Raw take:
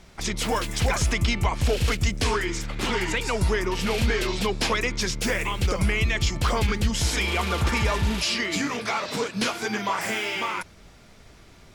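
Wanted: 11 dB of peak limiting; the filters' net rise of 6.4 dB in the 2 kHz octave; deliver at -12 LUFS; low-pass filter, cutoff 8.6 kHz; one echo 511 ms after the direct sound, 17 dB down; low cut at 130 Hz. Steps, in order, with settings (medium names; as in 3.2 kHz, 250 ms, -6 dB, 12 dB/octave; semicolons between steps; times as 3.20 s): high-pass 130 Hz; low-pass 8.6 kHz; peaking EQ 2 kHz +7.5 dB; peak limiter -20.5 dBFS; delay 511 ms -17 dB; trim +16.5 dB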